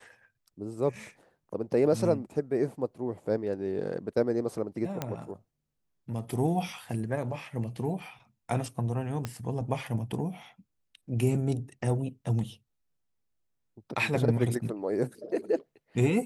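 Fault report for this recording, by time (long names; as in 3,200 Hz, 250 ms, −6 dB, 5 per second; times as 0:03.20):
0:05.02: click −16 dBFS
0:09.25: click −18 dBFS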